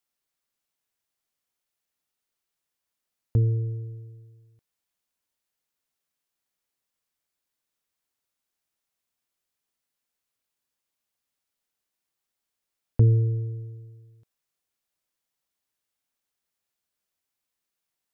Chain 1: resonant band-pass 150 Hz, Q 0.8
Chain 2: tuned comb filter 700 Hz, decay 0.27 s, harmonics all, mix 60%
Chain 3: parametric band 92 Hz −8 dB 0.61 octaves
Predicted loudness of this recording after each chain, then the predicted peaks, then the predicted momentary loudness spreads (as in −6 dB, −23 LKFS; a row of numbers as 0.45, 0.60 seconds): −26.0, −33.0, −29.0 LKFS; −10.5, −18.5, −12.0 dBFS; 19, 19, 19 LU